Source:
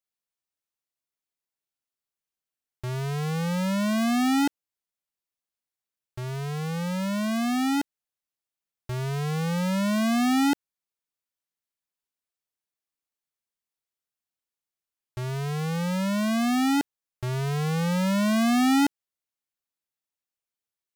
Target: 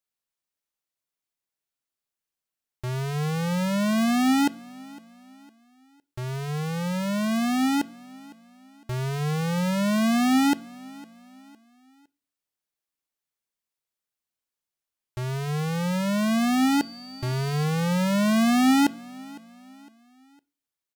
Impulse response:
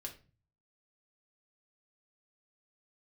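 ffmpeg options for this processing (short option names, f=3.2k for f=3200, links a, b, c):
-filter_complex "[0:a]asettb=1/sr,asplit=3[a][b][c];[a]atrim=end=16.694[d];[b]atrim=start=16.69:end=17.64,asetpts=PTS-STARTPTS,afade=t=in:d=0.004:c=qsin,afade=t=out:st=0.946:d=0.004:c=qsin,aeval=exprs='val(0)+0.00631*sin(2*PI*4600*n/s)':c=same[e];[c]atrim=start=17.636[f];[d][e]acrossfade=d=0.004:c1=hsin:c2=qsin[g];[g][f]acrossfade=d=0.004:c1=qsin:c2=hsin,aecho=1:1:508|1016|1524:0.0794|0.0326|0.0134,asplit=2[h][i];[1:a]atrim=start_sample=2205[j];[i][j]afir=irnorm=-1:irlink=0,volume=-10.5dB[k];[h][k]amix=inputs=2:normalize=0"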